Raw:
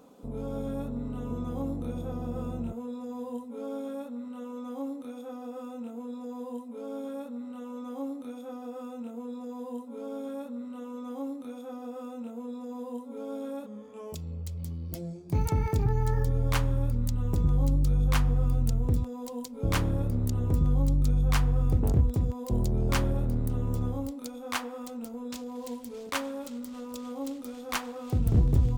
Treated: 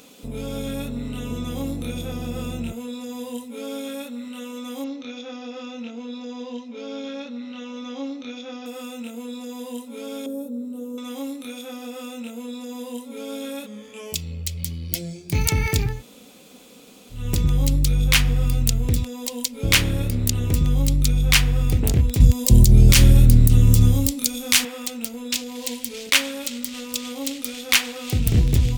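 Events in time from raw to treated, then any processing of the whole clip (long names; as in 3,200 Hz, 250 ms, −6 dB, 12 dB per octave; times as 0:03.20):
0:04.84–0:08.66: Butterworth low-pass 6,400 Hz 72 dB per octave
0:10.26–0:10.98: drawn EQ curve 150 Hz 0 dB, 430 Hz +6 dB, 1,400 Hz −17 dB, 2,000 Hz −27 dB, 3,900 Hz −18 dB, 8,700 Hz −7 dB, 16,000 Hz +1 dB
0:15.91–0:17.21: fill with room tone, crossfade 0.24 s
0:22.20–0:24.65: bass and treble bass +12 dB, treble +9 dB
whole clip: high shelf with overshoot 1,600 Hz +13.5 dB, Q 1.5; boost into a limiter +6 dB; level −1 dB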